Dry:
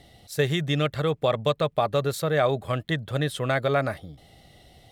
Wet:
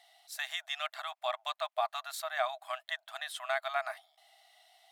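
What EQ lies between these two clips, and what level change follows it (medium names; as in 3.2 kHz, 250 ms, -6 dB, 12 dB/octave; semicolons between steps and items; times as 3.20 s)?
brick-wall FIR high-pass 620 Hz; -6.0 dB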